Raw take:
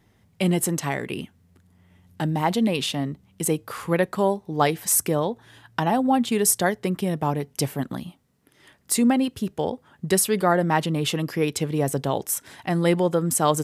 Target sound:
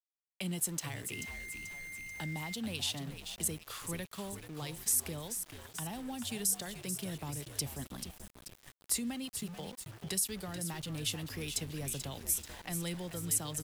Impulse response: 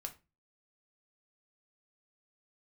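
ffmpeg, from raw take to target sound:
-filter_complex "[0:a]equalizer=f=110:w=0.31:g=-8,acrossover=split=310[a][b];[a]acompressor=mode=upward:threshold=-53dB:ratio=2.5[c];[b]alimiter=limit=-14.5dB:level=0:latency=1:release=243[d];[c][d]amix=inputs=2:normalize=0,acrossover=split=190|3000[e][f][g];[f]acompressor=threshold=-42dB:ratio=5[h];[e][h][g]amix=inputs=3:normalize=0,asplit=2[i][j];[j]asplit=6[k][l][m][n][o][p];[k]adelay=436,afreqshift=-65,volume=-9dB[q];[l]adelay=872,afreqshift=-130,volume=-14.5dB[r];[m]adelay=1308,afreqshift=-195,volume=-20dB[s];[n]adelay=1744,afreqshift=-260,volume=-25.5dB[t];[o]adelay=2180,afreqshift=-325,volume=-31.1dB[u];[p]adelay=2616,afreqshift=-390,volume=-36.6dB[v];[q][r][s][t][u][v]amix=inputs=6:normalize=0[w];[i][w]amix=inputs=2:normalize=0,asettb=1/sr,asplit=3[x][y][z];[x]atrim=end=1.124[aa];[y]atrim=start=1.12:end=2.54,asetpts=PTS-STARTPTS,afade=t=in:d=0.004:c=qsin,afade=t=out:st=1.416:d=0.004:c=qsin,aeval=exprs='val(0)+0.0126*sin(2*PI*2100*n/s)':c=same[ab];[z]atrim=start=2.536[ac];[aa][ab]acrossfade=d=0.004:c1=hsin:c2=qsin[ad];[ad][ac]acrossfade=d=0.004:c1=qsin:c2=hsin,aeval=exprs='val(0)*gte(abs(val(0)),0.00668)':c=same,volume=-4.5dB"

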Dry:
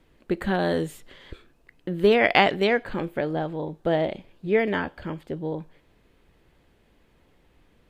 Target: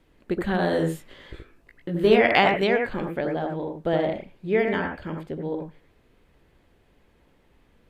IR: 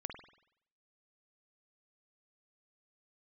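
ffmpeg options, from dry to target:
-filter_complex "[0:a]asettb=1/sr,asplit=3[a][b][c];[a]atrim=end=0.714[d];[b]atrim=start=0.71:end=2.21,asetpts=PTS-STARTPTS,afade=t=in:d=0.004:c=qsin,afade=t=out:st=1.496:d=0.004:c=qsin,asplit=2[e][f];[f]adelay=18,volume=-3.5dB[g];[e][g]amix=inputs=2:normalize=0,atrim=end_sample=66150[h];[c]atrim=start=2.206[i];[d][h]acrossfade=d=0.004:c1=hsin:c2=qsin[j];[j][i]acrossfade=d=0.004:c1=qsin:c2=hsin[k];[1:a]atrim=start_sample=2205,atrim=end_sample=3969,asetrate=28224,aresample=44100[l];[k][l]afir=irnorm=-1:irlink=0"

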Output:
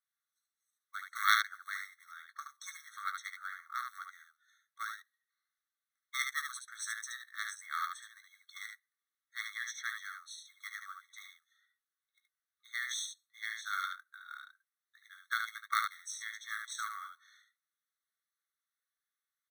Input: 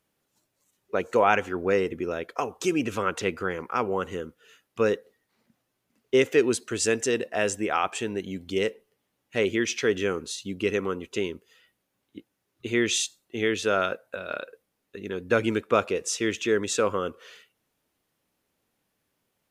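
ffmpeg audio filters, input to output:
-filter_complex "[0:a]acrusher=bits=6:mode=log:mix=0:aa=0.000001,aeval=exprs='0.562*(cos(1*acos(clip(val(0)/0.562,-1,1)))-cos(1*PI/2))+0.158*(cos(3*acos(clip(val(0)/0.562,-1,1)))-cos(3*PI/2))':c=same,asplit=2[a][b];[b]aecho=0:1:18|73:0.335|0.562[c];[a][c]amix=inputs=2:normalize=0,afftfilt=real='re*eq(mod(floor(b*sr/1024/1100),2),1)':imag='im*eq(mod(floor(b*sr/1024/1100),2),1)':win_size=1024:overlap=0.75,volume=3dB"

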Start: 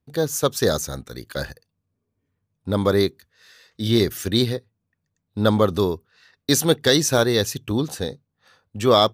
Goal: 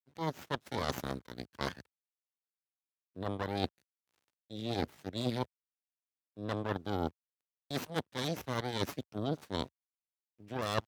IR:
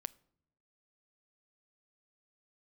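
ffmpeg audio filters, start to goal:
-filter_complex "[0:a]aeval=exprs='0.668*(cos(1*acos(clip(val(0)/0.668,-1,1)))-cos(1*PI/2))+0.211*(cos(3*acos(clip(val(0)/0.668,-1,1)))-cos(3*PI/2))+0.0944*(cos(6*acos(clip(val(0)/0.668,-1,1)))-cos(6*PI/2))':c=same,asplit=2[a][b];[b]aeval=exprs='(mod(1.26*val(0)+1,2)-1)/1.26':c=same,volume=-4.5dB[c];[a][c]amix=inputs=2:normalize=0,equalizer=f=240:w=2.5:g=4,acrusher=bits=9:mix=0:aa=0.000001,areverse,acompressor=threshold=-28dB:ratio=16,areverse,highpass=f=75:w=0.5412,highpass=f=75:w=1.3066,atempo=0.84,aemphasis=mode=reproduction:type=cd"

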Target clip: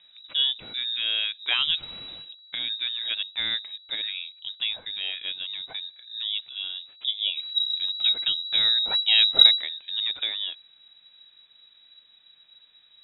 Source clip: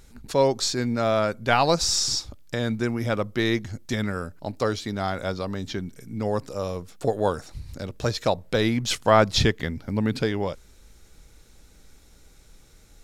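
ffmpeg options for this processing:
-filter_complex "[0:a]asplit=3[a][b][c];[a]afade=t=out:st=7.35:d=0.02[d];[b]asubboost=boost=8:cutoff=110,afade=t=in:st=7.35:d=0.02,afade=t=out:st=9.59:d=0.02[e];[c]afade=t=in:st=9.59:d=0.02[f];[d][e][f]amix=inputs=3:normalize=0,lowpass=f=3.3k:t=q:w=0.5098,lowpass=f=3.3k:t=q:w=0.6013,lowpass=f=3.3k:t=q:w=0.9,lowpass=f=3.3k:t=q:w=2.563,afreqshift=-3900,volume=-4.5dB"

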